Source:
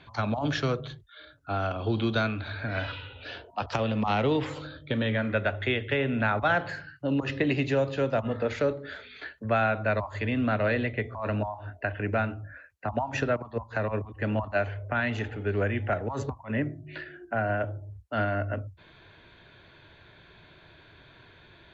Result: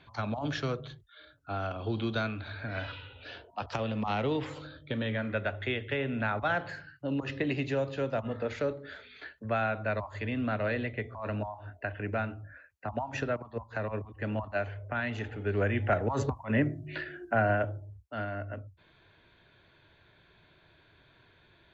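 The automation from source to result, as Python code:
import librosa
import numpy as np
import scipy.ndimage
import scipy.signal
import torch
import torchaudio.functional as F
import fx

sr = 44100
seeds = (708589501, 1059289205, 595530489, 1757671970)

y = fx.gain(x, sr, db=fx.line((15.15, -5.0), (16.05, 2.0), (17.46, 2.0), (18.14, -8.0)))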